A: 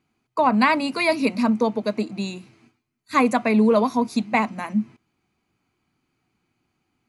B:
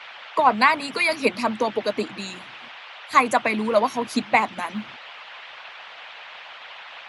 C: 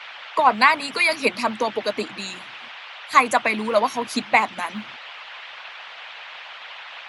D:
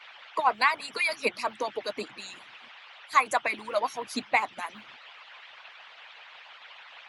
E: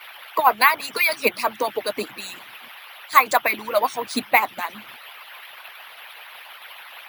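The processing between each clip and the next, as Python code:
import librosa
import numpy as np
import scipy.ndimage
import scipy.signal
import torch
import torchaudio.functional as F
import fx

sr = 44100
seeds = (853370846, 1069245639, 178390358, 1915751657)

y1 = fx.dmg_noise_band(x, sr, seeds[0], low_hz=590.0, high_hz=3300.0, level_db=-41.0)
y1 = fx.hpss(y1, sr, part='harmonic', gain_db=-14)
y1 = F.gain(torch.from_numpy(y1), 4.5).numpy()
y2 = fx.tilt_shelf(y1, sr, db=-3.0, hz=640.0)
y3 = fx.hpss(y2, sr, part='harmonic', gain_db=-14)
y3 = F.gain(torch.from_numpy(y3), -6.5).numpy()
y4 = np.repeat(y3[::3], 3)[:len(y3)]
y4 = F.gain(torch.from_numpy(y4), 7.5).numpy()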